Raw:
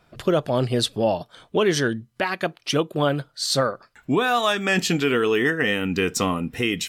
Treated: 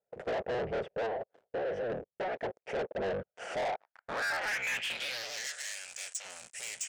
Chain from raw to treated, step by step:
sub-harmonics by changed cycles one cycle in 3, inverted
0:02.85–0:03.33: flanger swept by the level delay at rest 4.6 ms, full sweep at −17 dBFS
phaser with its sweep stopped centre 1,100 Hz, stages 6
leveller curve on the samples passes 5
0:01.06–0:01.90: downward compressor 12 to 1, threshold −16 dBFS, peak gain reduction 6.5 dB
band-pass filter sweep 470 Hz → 7,800 Hz, 0:03.35–0:05.57
downsampling to 22,050 Hz
treble cut that deepens with the level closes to 3,000 Hz, closed at −15.5 dBFS
soft clipping −23.5 dBFS, distortion −7 dB
0:05.47–0:06.25: parametric band 190 Hz −13 dB 2.6 octaves
level −7 dB

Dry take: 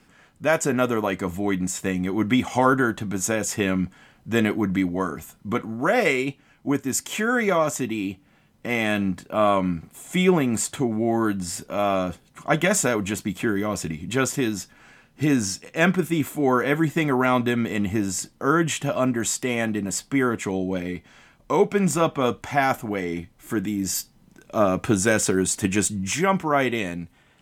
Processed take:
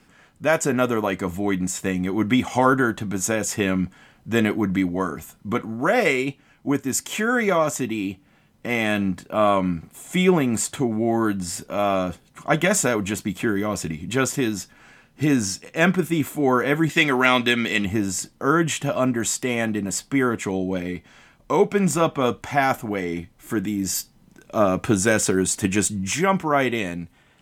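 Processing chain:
0:16.89–0:17.85: meter weighting curve D
level +1 dB

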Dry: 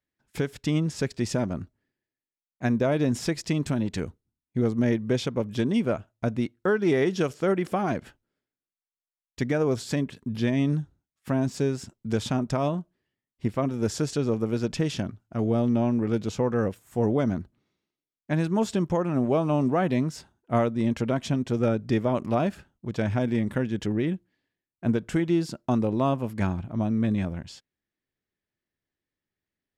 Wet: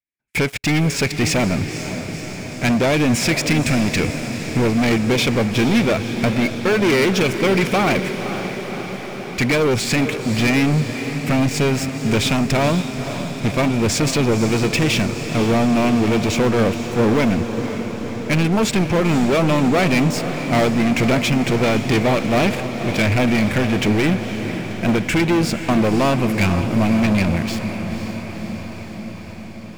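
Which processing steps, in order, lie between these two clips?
parametric band 2,300 Hz +15 dB 0.4 octaves
leveller curve on the samples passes 5
feedback delay with all-pass diffusion 508 ms, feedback 71%, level −9.5 dB
level −4 dB

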